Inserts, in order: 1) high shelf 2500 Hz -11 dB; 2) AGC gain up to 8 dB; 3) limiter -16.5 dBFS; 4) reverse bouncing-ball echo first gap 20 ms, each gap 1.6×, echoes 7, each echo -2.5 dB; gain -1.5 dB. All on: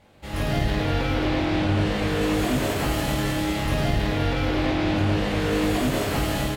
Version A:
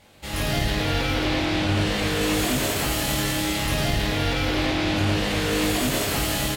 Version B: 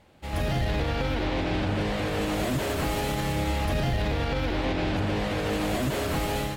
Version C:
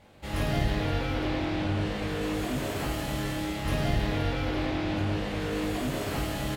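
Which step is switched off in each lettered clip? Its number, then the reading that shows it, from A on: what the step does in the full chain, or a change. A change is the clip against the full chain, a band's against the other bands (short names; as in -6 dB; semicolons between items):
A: 1, 8 kHz band +9.0 dB; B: 4, crest factor change -4.0 dB; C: 2, crest factor change +2.0 dB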